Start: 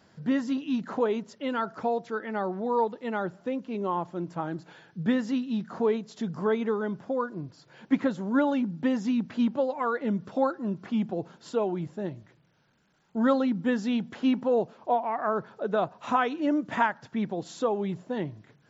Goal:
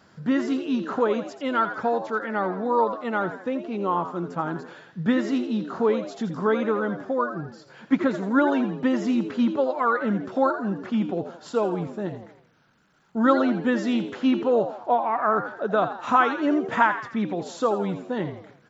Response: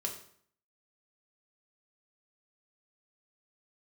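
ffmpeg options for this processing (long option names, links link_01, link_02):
-filter_complex "[0:a]equalizer=frequency=1300:width_type=o:width=0.53:gain=6,asplit=5[link_01][link_02][link_03][link_04][link_05];[link_02]adelay=83,afreqshift=87,volume=-10.5dB[link_06];[link_03]adelay=166,afreqshift=174,volume=-18dB[link_07];[link_04]adelay=249,afreqshift=261,volume=-25.6dB[link_08];[link_05]adelay=332,afreqshift=348,volume=-33.1dB[link_09];[link_01][link_06][link_07][link_08][link_09]amix=inputs=5:normalize=0,volume=3dB"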